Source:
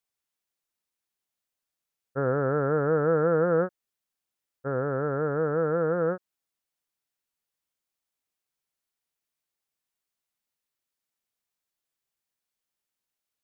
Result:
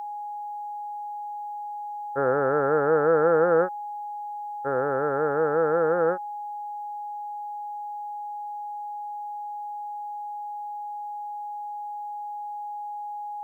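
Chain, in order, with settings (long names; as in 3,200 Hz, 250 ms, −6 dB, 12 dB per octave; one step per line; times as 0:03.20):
steady tone 830 Hz −36 dBFS
bass and treble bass −13 dB, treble +10 dB
level +4.5 dB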